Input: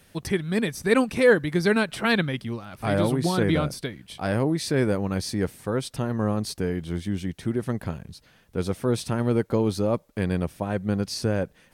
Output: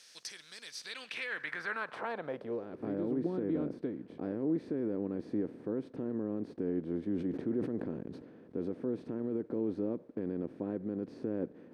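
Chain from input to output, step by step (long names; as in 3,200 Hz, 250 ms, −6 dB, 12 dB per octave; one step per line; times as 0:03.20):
compressor on every frequency bin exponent 0.6
brickwall limiter −12.5 dBFS, peak gain reduction 8.5 dB
band-pass filter sweep 5,600 Hz → 300 Hz, 0:00.63–0:02.87
0:07.01–0:08.68: level that may fall only so fast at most 65 dB per second
level −5.5 dB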